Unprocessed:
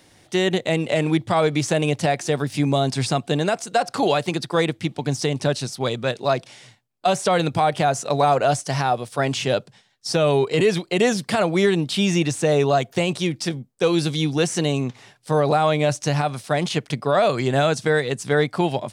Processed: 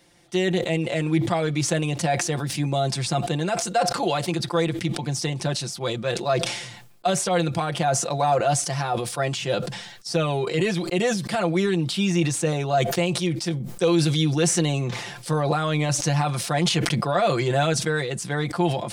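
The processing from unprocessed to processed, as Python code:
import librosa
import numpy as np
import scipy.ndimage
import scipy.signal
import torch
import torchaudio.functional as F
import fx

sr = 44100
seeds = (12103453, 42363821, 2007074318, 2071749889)

y = fx.env_flatten(x, sr, amount_pct=50, at=(13.6, 17.73))
y = y + 0.7 * np.pad(y, (int(5.8 * sr / 1000.0), 0))[:len(y)]
y = fx.sustainer(y, sr, db_per_s=54.0)
y = y * librosa.db_to_amplitude(-6.0)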